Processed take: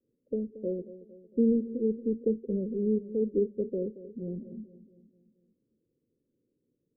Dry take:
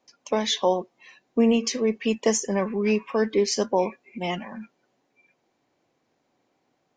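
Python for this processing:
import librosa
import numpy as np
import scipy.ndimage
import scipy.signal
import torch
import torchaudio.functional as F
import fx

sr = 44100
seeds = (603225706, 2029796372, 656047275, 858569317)

y = scipy.signal.sosfilt(scipy.signal.butter(12, 510.0, 'lowpass', fs=sr, output='sos'), x)
y = fx.low_shelf(y, sr, hz=130.0, db=7.5)
y = fx.echo_feedback(y, sr, ms=228, feedback_pct=53, wet_db=-15)
y = y * librosa.db_to_amplitude(-6.0)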